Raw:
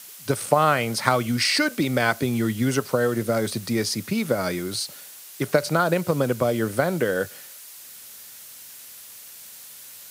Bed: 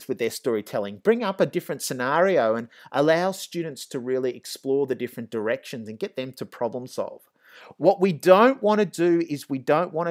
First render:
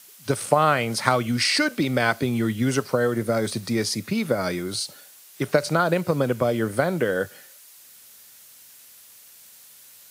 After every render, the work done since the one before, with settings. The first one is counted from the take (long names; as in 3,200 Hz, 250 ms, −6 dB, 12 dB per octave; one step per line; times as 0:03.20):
noise reduction from a noise print 6 dB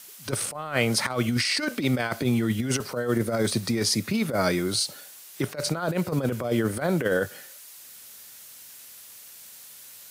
compressor whose output falls as the input rises −24 dBFS, ratio −0.5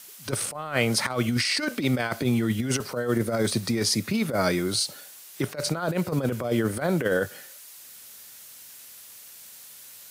no processing that can be heard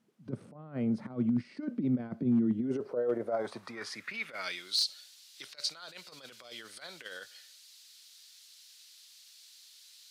band-pass filter sweep 210 Hz → 4,200 Hz, 0:02.33–0:04.77
gain into a clipping stage and back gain 21 dB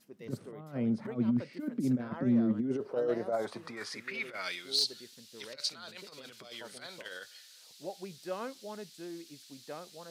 mix in bed −23.5 dB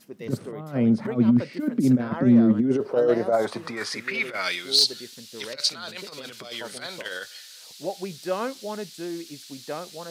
level +10.5 dB